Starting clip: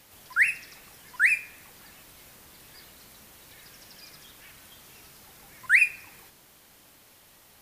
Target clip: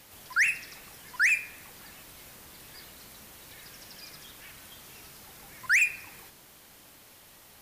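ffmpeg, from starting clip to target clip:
-af "asoftclip=type=tanh:threshold=-20.5dB,volume=2dB"

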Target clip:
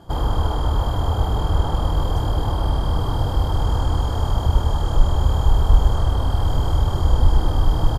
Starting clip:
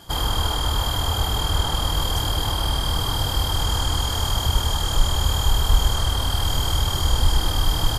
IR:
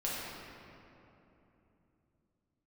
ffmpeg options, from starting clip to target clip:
-af "firequalizer=gain_entry='entry(540,0);entry(2100,-15);entry(11000,-20)':delay=0.05:min_phase=1,volume=4dB"

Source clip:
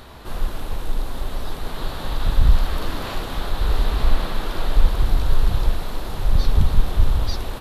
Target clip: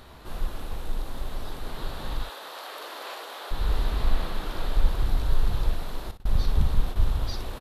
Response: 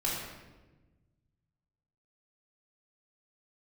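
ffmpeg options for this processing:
-filter_complex "[0:a]asettb=1/sr,asplit=3[a][b][c];[a]atrim=end=2.234[d];[b]atrim=start=2.23:end=3.51,asetpts=PTS-STARTPTS,afade=t=in:d=0.004:c=qsin,afade=t=out:st=1.276:d=0.004:c=qsin,highpass=f=440:w=0.5412,highpass=f=440:w=1.3066[e];[c]atrim=start=3.506[f];[d][e]acrossfade=d=0.004:c1=hsin:c2=qsin[g];[g][f]acrossfade=d=0.004:c1=qsin:c2=hsin,asettb=1/sr,asplit=3[h][i][j];[h]atrim=end=6.114[k];[i]atrim=start=6.11:end=6.96,asetpts=PTS-STARTPTS,afade=t=in:d=0.004:c=qsin,afade=t=out:st=0.846:d=0.004:c=qsin,agate=range=-30dB:threshold=-18dB:ratio=16:detection=peak[l];[j]atrim=start=6.956[m];[k][l]acrossfade=d=0.004:c1=hsin:c2=qsin[n];[n][m]acrossfade=d=0.004:c1=qsin:c2=hsin,aecho=1:1:41|61:0.188|0.266,volume=-6.5dB"

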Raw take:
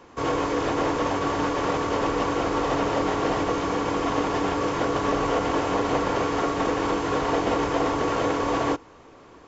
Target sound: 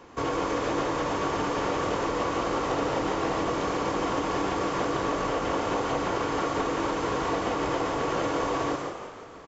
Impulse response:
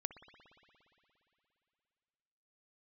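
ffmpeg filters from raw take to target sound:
-filter_complex "[0:a]acompressor=threshold=-25dB:ratio=6,asplit=7[a][b][c][d][e][f][g];[b]adelay=172,afreqshift=50,volume=-8.5dB[h];[c]adelay=344,afreqshift=100,volume=-14.5dB[i];[d]adelay=516,afreqshift=150,volume=-20.5dB[j];[e]adelay=688,afreqshift=200,volume=-26.6dB[k];[f]adelay=860,afreqshift=250,volume=-32.6dB[l];[g]adelay=1032,afreqshift=300,volume=-38.6dB[m];[a][h][i][j][k][l][m]amix=inputs=7:normalize=0,asplit=2[n][o];[1:a]atrim=start_sample=2205,highshelf=f=5.4k:g=11.5,adelay=141[p];[o][p]afir=irnorm=-1:irlink=0,volume=-6.5dB[q];[n][q]amix=inputs=2:normalize=0"

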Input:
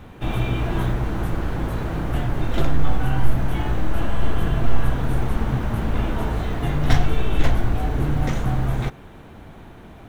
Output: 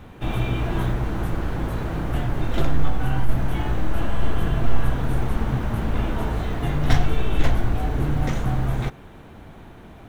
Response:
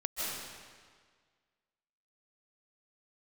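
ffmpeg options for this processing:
-filter_complex "[0:a]asettb=1/sr,asplit=3[a][b][c];[a]atrim=end=2.884[d];[b]atrim=start=2.88:end=3.29,asetpts=PTS-STARTPTS,afade=t=in:d=0.004:c=qsin,afade=t=out:st=0.406:d=0.004:c=qsin,acompressor=threshold=-11dB:ratio=6[e];[c]atrim=start=3.286[f];[d][e]acrossfade=d=0.004:c1=hsin:c2=qsin[g];[g][f]acrossfade=d=0.004:c1=qsin:c2=hsin,volume=-1dB"

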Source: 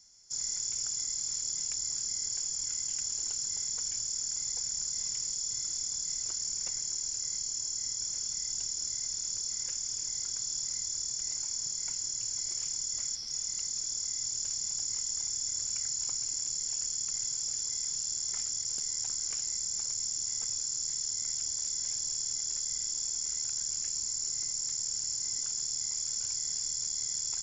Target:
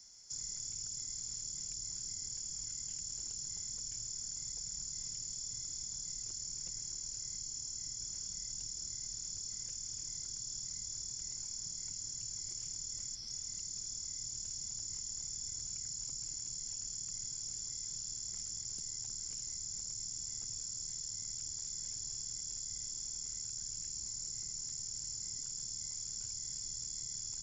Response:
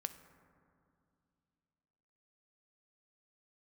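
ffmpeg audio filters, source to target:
-filter_complex "[0:a]acrossover=split=240[a][b];[b]acompressor=threshold=-50dB:ratio=2[c];[a][c]amix=inputs=2:normalize=0,acrossover=split=510|3000[d][e][f];[e]alimiter=level_in=36dB:limit=-24dB:level=0:latency=1:release=212,volume=-36dB[g];[d][g][f]amix=inputs=3:normalize=0,volume=2dB"

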